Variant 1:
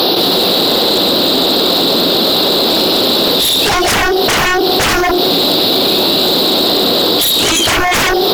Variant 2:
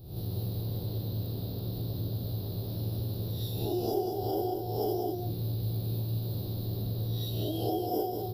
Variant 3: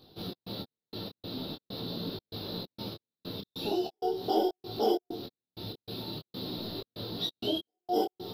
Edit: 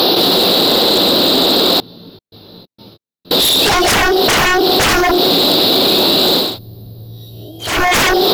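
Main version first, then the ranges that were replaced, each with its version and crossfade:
1
0:01.80–0:03.31: punch in from 3
0:06.47–0:07.71: punch in from 2, crossfade 0.24 s

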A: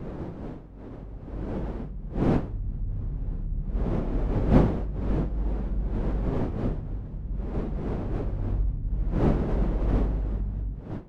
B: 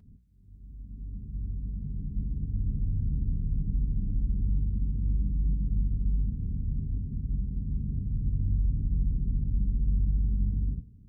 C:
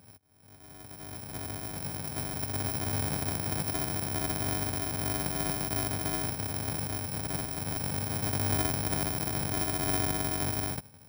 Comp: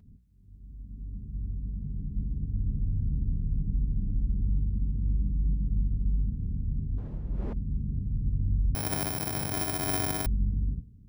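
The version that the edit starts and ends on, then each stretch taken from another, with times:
B
0:06.98–0:07.53: punch in from A
0:08.75–0:10.26: punch in from C

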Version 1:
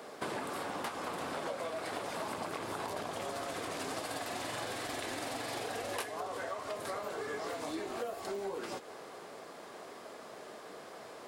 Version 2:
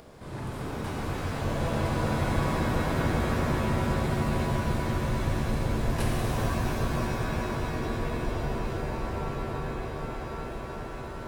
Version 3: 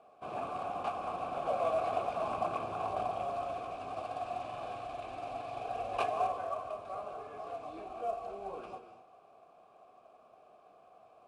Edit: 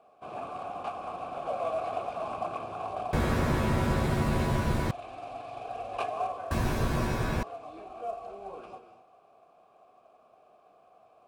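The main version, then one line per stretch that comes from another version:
3
0:03.13–0:04.91: punch in from 2
0:06.51–0:07.43: punch in from 2
not used: 1

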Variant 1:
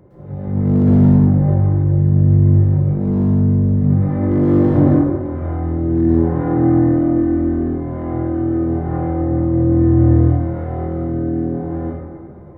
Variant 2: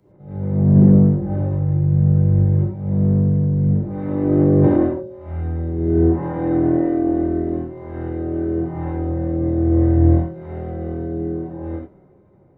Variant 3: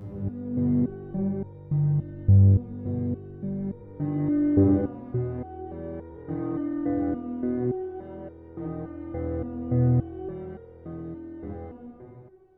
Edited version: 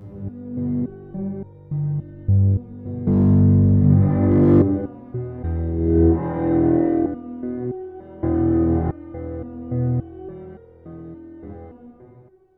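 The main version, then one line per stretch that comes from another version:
3
0:03.07–0:04.62: punch in from 1
0:05.44–0:07.06: punch in from 2
0:08.23–0:08.91: punch in from 1

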